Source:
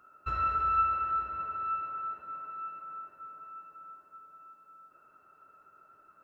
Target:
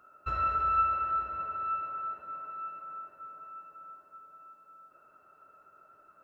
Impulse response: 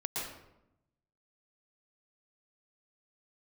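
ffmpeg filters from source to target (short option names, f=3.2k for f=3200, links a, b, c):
-af "equalizer=f=610:w=2.7:g=5.5"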